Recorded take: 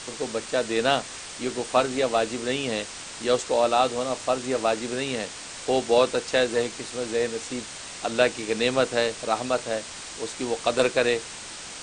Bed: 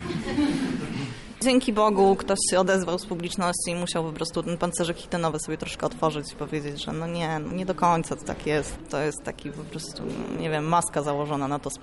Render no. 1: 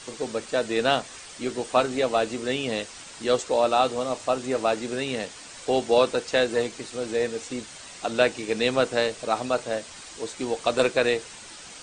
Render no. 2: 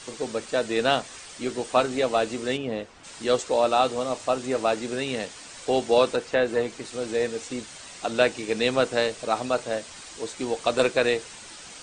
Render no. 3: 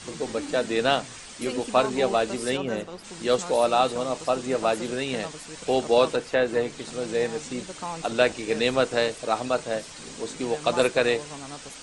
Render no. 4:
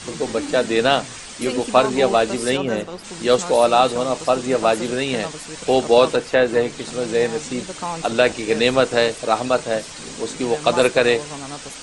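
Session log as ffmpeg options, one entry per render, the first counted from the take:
-af "afftdn=nr=7:nf=-39"
-filter_complex "[0:a]asplit=3[a][b][c];[a]afade=t=out:st=2.56:d=0.02[d];[b]lowpass=f=1k:p=1,afade=t=in:st=2.56:d=0.02,afade=t=out:st=3.03:d=0.02[e];[c]afade=t=in:st=3.03:d=0.02[f];[d][e][f]amix=inputs=3:normalize=0,asettb=1/sr,asplit=3[g][h][i];[g]atrim=end=6.164[j];[h]atrim=start=6.16:end=6.85,asetpts=PTS-STARTPTS,afade=t=in:d=0.004:c=qsin,afade=t=out:st=0.686:d=0.004:c=qsin,acrossover=split=2700[k][l];[l]acompressor=threshold=-43dB:ratio=4:attack=1:release=60[m];[k][m]amix=inputs=2:normalize=0[n];[i]atrim=start=6.846[o];[j][n]acrossfade=d=0.004:c1=hsin:c2=qsin[p];[p][o]acrossfade=d=0.004:c1=qsin:c2=hsin"
-filter_complex "[1:a]volume=-13dB[a];[0:a][a]amix=inputs=2:normalize=0"
-af "volume=6.5dB,alimiter=limit=-2dB:level=0:latency=1"

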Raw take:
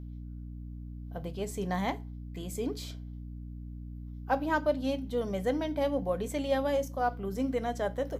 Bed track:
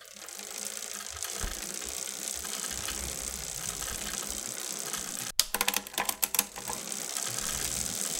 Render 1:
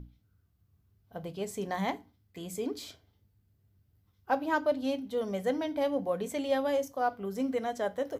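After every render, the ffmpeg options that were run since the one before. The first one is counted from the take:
-af "bandreject=f=60:t=h:w=6,bandreject=f=120:t=h:w=6,bandreject=f=180:t=h:w=6,bandreject=f=240:t=h:w=6,bandreject=f=300:t=h:w=6"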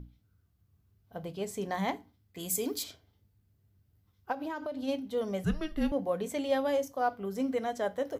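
-filter_complex "[0:a]asplit=3[a][b][c];[a]afade=t=out:st=2.38:d=0.02[d];[b]aemphasis=mode=production:type=75kf,afade=t=in:st=2.38:d=0.02,afade=t=out:st=2.82:d=0.02[e];[c]afade=t=in:st=2.82:d=0.02[f];[d][e][f]amix=inputs=3:normalize=0,asplit=3[g][h][i];[g]afade=t=out:st=4.31:d=0.02[j];[h]acompressor=threshold=-32dB:ratio=12:attack=3.2:release=140:knee=1:detection=peak,afade=t=in:st=4.31:d=0.02,afade=t=out:st=4.87:d=0.02[k];[i]afade=t=in:st=4.87:d=0.02[l];[j][k][l]amix=inputs=3:normalize=0,asettb=1/sr,asplit=3[m][n][o];[m]atrim=end=5.444[p];[n]atrim=start=5.44:end=5.92,asetpts=PTS-STARTPTS,afade=t=in:d=0.004:c=qsin,afade=t=out:st=0.476:d=0.004:c=qsin,afreqshift=-310[q];[o]atrim=start=5.916[r];[p][q]acrossfade=d=0.004:c1=hsin:c2=qsin[s];[s][r]acrossfade=d=0.004:c1=qsin:c2=hsin"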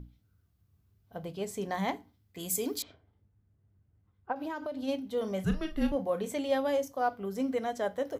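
-filter_complex "[0:a]asettb=1/sr,asplit=3[a][b][c];[a]atrim=end=2.824[d];[b]atrim=start=2.82:end=4.36,asetpts=PTS-STARTPTS,afade=t=in:d=0.004:c=qsin,afade=t=out:st=1.536:d=0.004:c=qsin,lowpass=1.8k[e];[c]atrim=start=4.356[f];[d][e]acrossfade=d=0.004:c1=hsin:c2=qsin[g];[g][f]acrossfade=d=0.004:c1=qsin:c2=hsin,asettb=1/sr,asplit=3[h][i][j];[h]atrim=end=5.164[k];[i]atrim=start=5.16:end=6.34,asetpts=PTS-STARTPTS,afade=t=in:d=0.004:c=qsin,afade=t=out:st=1.176:d=0.004:c=qsin,asplit=2[l][m];[m]adelay=37,volume=-10dB[n];[l][n]amix=inputs=2:normalize=0,atrim=end_sample=52038[o];[j]atrim=start=6.336[p];[k][o]acrossfade=d=0.004:c1=hsin:c2=qsin[q];[q][p]acrossfade=d=0.004:c1=qsin:c2=hsin"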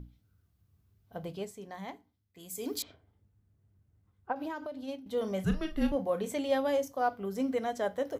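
-filter_complex "[0:a]asplit=4[a][b][c][d];[a]atrim=end=1.54,asetpts=PTS-STARTPTS,afade=t=out:st=1.35:d=0.19:silence=0.298538[e];[b]atrim=start=1.54:end=2.55,asetpts=PTS-STARTPTS,volume=-10.5dB[f];[c]atrim=start=2.55:end=5.06,asetpts=PTS-STARTPTS,afade=t=in:d=0.19:silence=0.298538,afade=t=out:st=1.87:d=0.64:silence=0.281838[g];[d]atrim=start=5.06,asetpts=PTS-STARTPTS,afade=t=in:d=0.004:c=hsin:silence=0.281838[h];[e][f][g][h]concat=n=4:v=0:a=1"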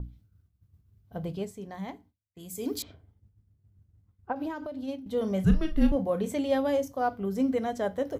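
-af "lowshelf=f=260:g=11.5,agate=range=-33dB:threshold=-53dB:ratio=3:detection=peak"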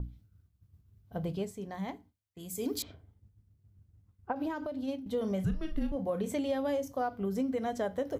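-af "acompressor=threshold=-28dB:ratio=12"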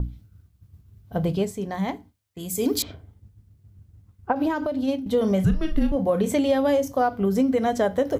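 -af "volume=11dB"

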